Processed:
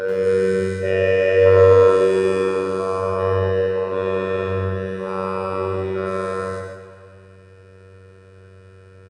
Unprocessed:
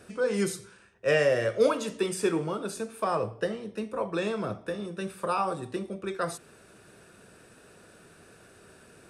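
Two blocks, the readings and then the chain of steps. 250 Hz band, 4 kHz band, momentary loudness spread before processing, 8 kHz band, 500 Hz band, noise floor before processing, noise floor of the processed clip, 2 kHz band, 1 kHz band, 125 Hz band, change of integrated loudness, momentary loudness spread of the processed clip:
+6.0 dB, +2.5 dB, 11 LU, can't be measured, +12.5 dB, −56 dBFS, −46 dBFS, +7.0 dB, +7.0 dB, +13.5 dB, +11.0 dB, 13 LU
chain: every bin's largest magnitude spread in time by 480 ms
parametric band 110 Hz +8.5 dB 0.51 octaves
notch filter 970 Hz, Q 11
comb filter 2.1 ms, depth 71%
phases set to zero 95 Hz
head-to-tape spacing loss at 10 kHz 20 dB
on a send: tape delay 271 ms, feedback 40%, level −13.5 dB, low-pass 5,800 Hz
on the sum: dense smooth reverb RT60 0.89 s, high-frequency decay 0.75×, pre-delay 80 ms, DRR 1 dB
level −1.5 dB

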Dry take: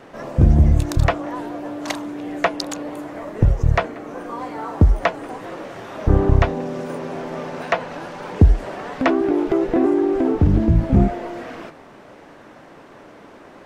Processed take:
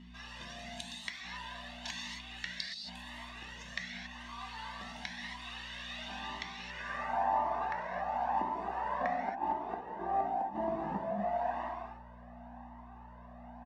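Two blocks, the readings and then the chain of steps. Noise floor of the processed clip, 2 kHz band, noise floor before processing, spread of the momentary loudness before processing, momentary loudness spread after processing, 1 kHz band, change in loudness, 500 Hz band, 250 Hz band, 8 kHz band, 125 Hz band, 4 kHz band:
−51 dBFS, −11.0 dB, −44 dBFS, 16 LU, 17 LU, −6.0 dB, −17.5 dB, −17.5 dB, −24.5 dB, can't be measured, −33.0 dB, −5.5 dB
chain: noise gate −41 dBFS, range −7 dB
band-pass filter sweep 3,400 Hz → 760 Hz, 0:06.57–0:07.20
tilt shelving filter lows −5.5 dB, about 650 Hz
comb filter 1.1 ms, depth 62%
hum with harmonics 60 Hz, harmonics 4, −45 dBFS −4 dB per octave
gate with flip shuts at −19 dBFS, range −28 dB
low shelf with overshoot 140 Hz −10.5 dB, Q 3
reverb whose tail is shaped and stops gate 300 ms flat, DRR −1.5 dB
flanger whose copies keep moving one way rising 0.94 Hz

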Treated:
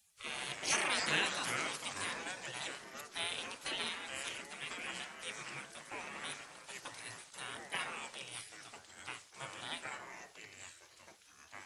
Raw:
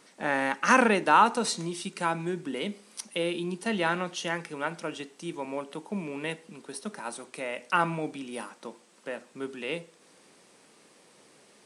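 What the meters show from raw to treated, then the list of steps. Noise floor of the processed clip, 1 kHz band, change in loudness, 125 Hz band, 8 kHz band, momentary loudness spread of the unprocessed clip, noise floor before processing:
−62 dBFS, −16.0 dB, −10.0 dB, −15.5 dB, −2.0 dB, 18 LU, −59 dBFS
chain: gate on every frequency bin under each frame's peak −20 dB weak
delay with pitch and tempo change per echo 98 ms, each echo −4 semitones, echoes 2, each echo −6 dB
level +2.5 dB

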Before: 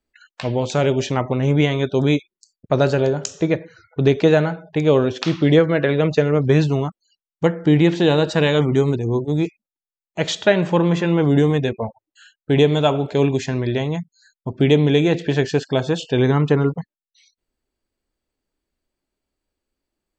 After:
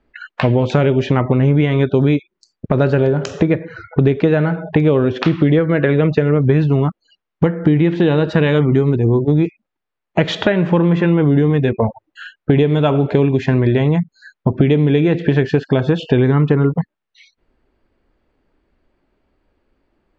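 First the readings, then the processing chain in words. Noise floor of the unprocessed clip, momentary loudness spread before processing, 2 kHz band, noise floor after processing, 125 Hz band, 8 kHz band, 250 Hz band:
below −85 dBFS, 9 LU, +1.5 dB, −80 dBFS, +5.0 dB, can't be measured, +4.0 dB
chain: low-pass filter 2,100 Hz 12 dB per octave
dynamic equaliser 740 Hz, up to −6 dB, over −29 dBFS, Q 0.97
downward compressor 6 to 1, threshold −29 dBFS, peak gain reduction 16.5 dB
boost into a limiter +18.5 dB
level −1 dB

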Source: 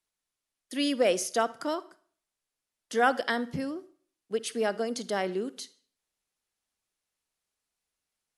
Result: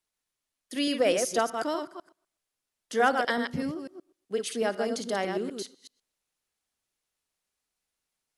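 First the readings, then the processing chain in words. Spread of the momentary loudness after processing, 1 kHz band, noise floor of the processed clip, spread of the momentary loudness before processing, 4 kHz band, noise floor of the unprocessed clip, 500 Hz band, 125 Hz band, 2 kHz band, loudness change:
15 LU, +1.0 dB, below −85 dBFS, 12 LU, +1.0 dB, below −85 dBFS, +1.0 dB, +1.0 dB, +1.0 dB, +1.0 dB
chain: delay that plays each chunk backwards 125 ms, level −5.5 dB

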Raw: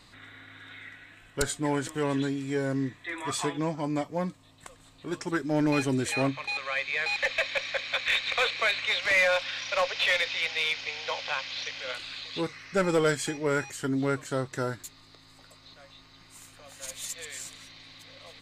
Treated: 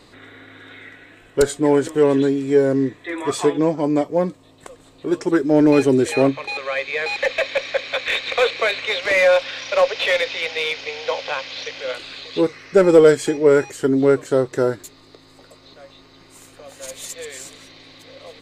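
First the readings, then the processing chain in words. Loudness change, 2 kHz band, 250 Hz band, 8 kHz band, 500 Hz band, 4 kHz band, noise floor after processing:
+9.5 dB, +4.0 dB, +11.0 dB, +3.5 dB, +14.5 dB, +3.5 dB, −49 dBFS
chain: parametric band 420 Hz +13 dB 1.3 octaves
level +3.5 dB

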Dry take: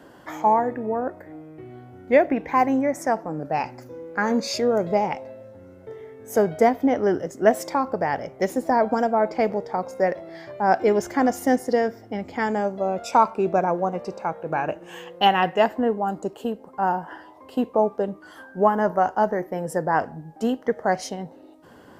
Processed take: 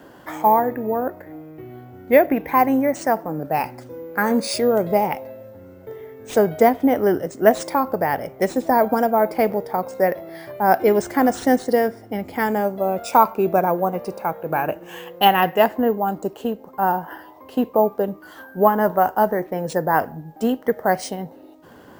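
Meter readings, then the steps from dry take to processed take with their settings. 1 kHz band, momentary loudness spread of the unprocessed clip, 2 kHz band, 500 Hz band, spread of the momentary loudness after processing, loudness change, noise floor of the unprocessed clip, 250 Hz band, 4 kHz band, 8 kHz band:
+3.0 dB, 16 LU, +3.0 dB, +3.0 dB, 16 LU, +3.0 dB, −48 dBFS, +3.0 dB, +2.5 dB, +3.0 dB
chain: bad sample-rate conversion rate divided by 3×, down none, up hold
level +3 dB

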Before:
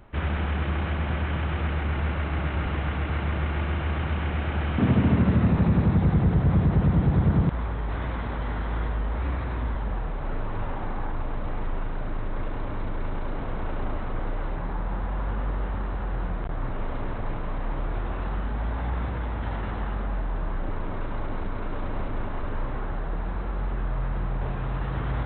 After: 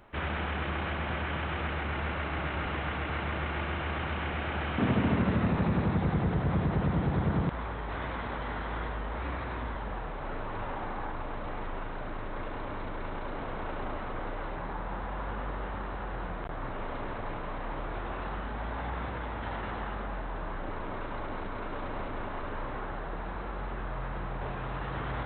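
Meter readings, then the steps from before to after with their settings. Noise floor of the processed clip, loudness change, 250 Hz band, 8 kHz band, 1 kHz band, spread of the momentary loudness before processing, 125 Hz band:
−37 dBFS, −6.0 dB, −6.0 dB, can't be measured, −0.5 dB, 12 LU, −8.5 dB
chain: low-shelf EQ 240 Hz −10.5 dB

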